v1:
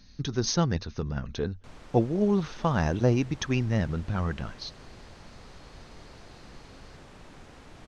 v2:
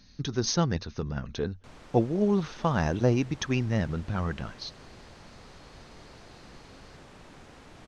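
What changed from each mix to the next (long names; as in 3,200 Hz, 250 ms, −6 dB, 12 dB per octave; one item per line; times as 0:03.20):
master: add low-shelf EQ 67 Hz −5.5 dB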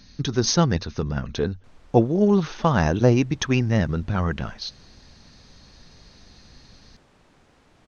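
speech +6.5 dB
background −7.5 dB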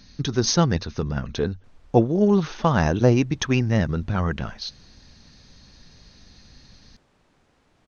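background −5.5 dB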